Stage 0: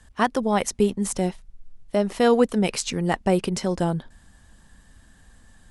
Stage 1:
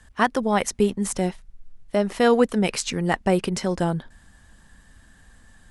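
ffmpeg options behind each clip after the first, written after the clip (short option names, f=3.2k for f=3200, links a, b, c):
-af "equalizer=f=1.7k:t=o:w=1.1:g=3.5"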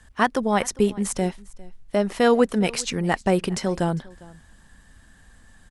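-af "aecho=1:1:403:0.075"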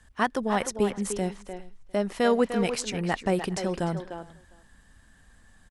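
-filter_complex "[0:a]asplit=2[a][b];[b]adelay=300,highpass=300,lowpass=3.4k,asoftclip=type=hard:threshold=-13.5dB,volume=-7dB[c];[a][c]amix=inputs=2:normalize=0,volume=-5dB"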